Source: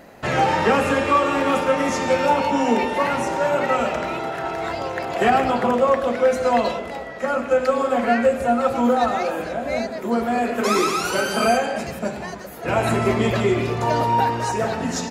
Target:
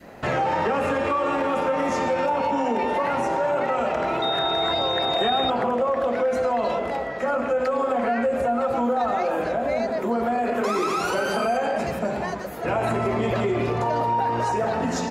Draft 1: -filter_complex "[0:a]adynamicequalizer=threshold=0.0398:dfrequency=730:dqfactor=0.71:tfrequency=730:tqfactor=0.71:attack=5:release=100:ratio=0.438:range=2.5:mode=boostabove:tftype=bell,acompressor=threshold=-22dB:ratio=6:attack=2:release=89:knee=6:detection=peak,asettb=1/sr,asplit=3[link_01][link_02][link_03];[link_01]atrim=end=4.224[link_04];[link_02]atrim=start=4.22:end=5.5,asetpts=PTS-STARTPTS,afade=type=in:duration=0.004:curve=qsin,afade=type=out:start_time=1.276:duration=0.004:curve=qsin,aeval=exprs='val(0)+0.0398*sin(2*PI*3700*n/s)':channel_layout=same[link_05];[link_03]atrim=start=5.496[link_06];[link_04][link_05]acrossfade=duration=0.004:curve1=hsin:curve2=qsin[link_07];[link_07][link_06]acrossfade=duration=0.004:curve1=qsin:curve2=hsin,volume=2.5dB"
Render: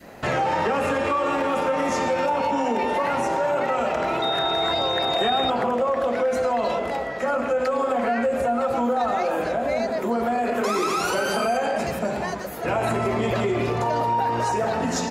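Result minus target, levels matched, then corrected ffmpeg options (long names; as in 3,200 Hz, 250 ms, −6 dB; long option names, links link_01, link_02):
8,000 Hz band +4.5 dB
-filter_complex "[0:a]adynamicequalizer=threshold=0.0398:dfrequency=730:dqfactor=0.71:tfrequency=730:tqfactor=0.71:attack=5:release=100:ratio=0.438:range=2.5:mode=boostabove:tftype=bell,acompressor=threshold=-22dB:ratio=6:attack=2:release=89:knee=6:detection=peak,highshelf=frequency=3700:gain=-6,asettb=1/sr,asplit=3[link_01][link_02][link_03];[link_01]atrim=end=4.224[link_04];[link_02]atrim=start=4.22:end=5.5,asetpts=PTS-STARTPTS,afade=type=in:duration=0.004:curve=qsin,afade=type=out:start_time=1.276:duration=0.004:curve=qsin,aeval=exprs='val(0)+0.0398*sin(2*PI*3700*n/s)':channel_layout=same[link_05];[link_03]atrim=start=5.496[link_06];[link_04][link_05]acrossfade=duration=0.004:curve1=hsin:curve2=qsin[link_07];[link_07][link_06]acrossfade=duration=0.004:curve1=qsin:curve2=hsin,volume=2.5dB"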